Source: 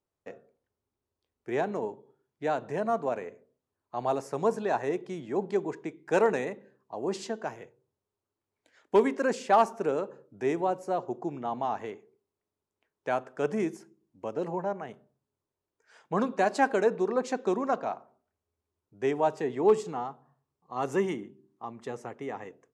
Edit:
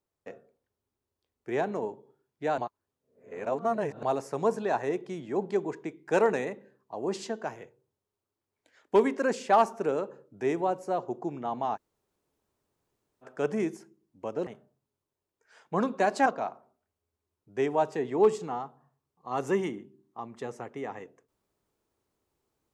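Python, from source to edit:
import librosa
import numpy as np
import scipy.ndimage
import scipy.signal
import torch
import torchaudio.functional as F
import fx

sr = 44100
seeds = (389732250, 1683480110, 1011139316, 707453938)

y = fx.edit(x, sr, fx.reverse_span(start_s=2.58, length_s=1.45),
    fx.room_tone_fill(start_s=11.76, length_s=1.47, crossfade_s=0.04),
    fx.cut(start_s=14.47, length_s=0.39),
    fx.cut(start_s=16.65, length_s=1.06), tone=tone)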